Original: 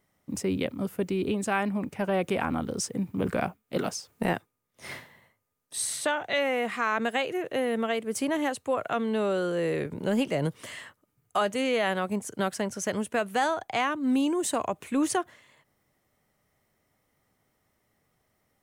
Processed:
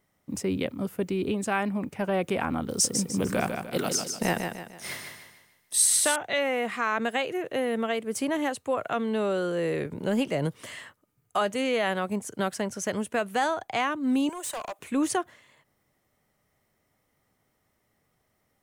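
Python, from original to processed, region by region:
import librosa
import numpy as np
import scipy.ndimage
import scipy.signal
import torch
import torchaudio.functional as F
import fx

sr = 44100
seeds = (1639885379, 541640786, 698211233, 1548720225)

y = fx.chain(x, sr, fx.high_shelf(hz=4000.0, db=11.5),
    fx.echo_feedback(ms=150, feedback_pct=40, wet_db=-6.0), at=(2.69, 6.16))
y = fx.chain(y, sr, fx.highpass(hz=530.0, slope=24),
    fx.high_shelf(hz=9900.0, db=6.5),
    fx.overload_stage(gain_db=31.5), at=(14.29, 14.79))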